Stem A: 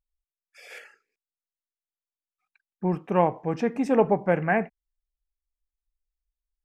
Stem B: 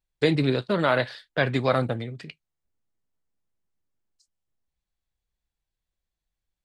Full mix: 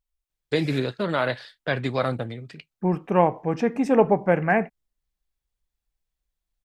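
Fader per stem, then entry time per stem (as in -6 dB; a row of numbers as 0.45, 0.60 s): +2.5, -2.0 dB; 0.00, 0.30 s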